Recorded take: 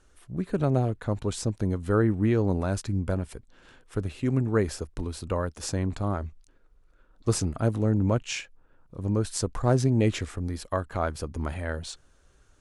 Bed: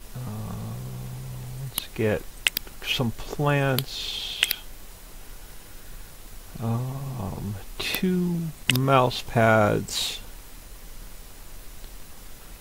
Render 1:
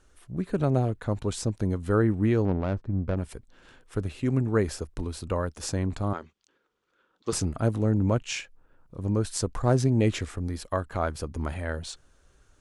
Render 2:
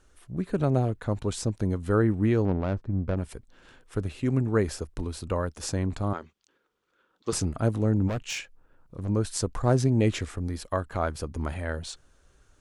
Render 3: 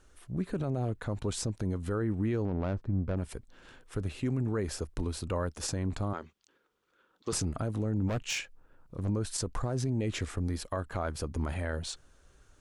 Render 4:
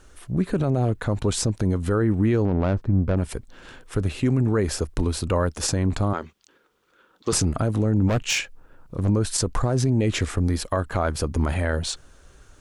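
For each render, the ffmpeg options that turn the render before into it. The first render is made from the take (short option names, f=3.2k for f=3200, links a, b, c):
-filter_complex "[0:a]asettb=1/sr,asplit=3[a][b][c];[a]atrim=end=2.454[d];[b]atrim=start=2.45:end=3.17,asetpts=PTS-STARTPTS,afade=t=in:d=0.004:c=qsin,afade=t=out:st=0.716:d=0.004:c=qsin,adynamicsmooth=sensitivity=1.5:basefreq=580[e];[c]atrim=start=3.166[f];[d][e]acrossfade=d=0.004:c1=hsin:c2=qsin[g];[g][f]acrossfade=d=0.004:c1=qsin:c2=hsin,asettb=1/sr,asplit=3[h][i][j];[h]atrim=end=6.134[k];[i]atrim=start=6.13:end=7.33,asetpts=PTS-STARTPTS,afade=t=in:d=0.004:c=qsin,afade=t=out:st=1.196:d=0.004:c=qsin,highpass=270,equalizer=f=280:t=q:w=4:g=-4,equalizer=f=650:t=q:w=4:g=-8,equalizer=f=3.2k:t=q:w=4:g=6,lowpass=f=7.4k:w=0.5412,lowpass=f=7.4k:w=1.3066[l];[j]atrim=start=7.326[m];[k][l]acrossfade=d=0.004:c1=hsin:c2=qsin[n];[n][m]acrossfade=d=0.004:c1=qsin:c2=hsin"
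-filter_complex "[0:a]asplit=3[a][b][c];[a]afade=t=out:st=8.07:d=0.02[d];[b]asoftclip=type=hard:threshold=-26.5dB,afade=t=in:st=8.07:d=0.02,afade=t=out:st=9.08:d=0.02[e];[c]afade=t=in:st=9.08:d=0.02[f];[d][e][f]amix=inputs=3:normalize=0"
-af "acompressor=threshold=-27dB:ratio=2,alimiter=limit=-22.5dB:level=0:latency=1:release=15"
-af "volume=10dB"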